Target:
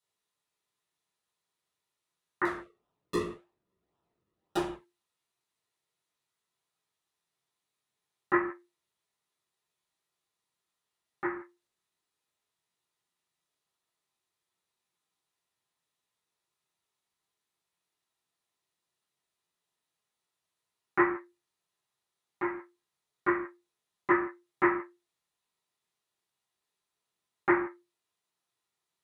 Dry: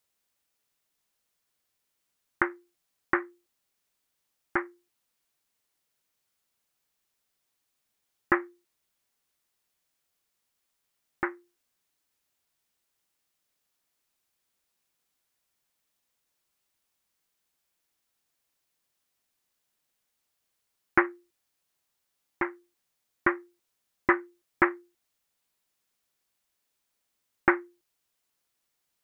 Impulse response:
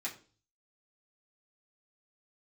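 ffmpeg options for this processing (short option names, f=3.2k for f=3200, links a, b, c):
-filter_complex "[0:a]asettb=1/sr,asplit=3[a][b][c];[a]atrim=end=2.454[d];[b]atrim=start=2.45:end=4.67,asetpts=PTS-STARTPTS,afade=t=in:d=0.004:c=qsin,afade=t=out:st=2.216:d=0.004:c=qsin,acrusher=samples=39:mix=1:aa=0.000001:lfo=1:lforange=39:lforate=1.8[e];[c]atrim=start=4.666[f];[d][e]acrossfade=d=0.004:c1=hsin:c2=qsin[g];[g][f]acrossfade=d=0.004:c1=qsin:c2=hsin[h];[1:a]atrim=start_sample=2205,atrim=end_sample=4410,asetrate=22932,aresample=44100[i];[h][i]afir=irnorm=-1:irlink=0,volume=-8.5dB"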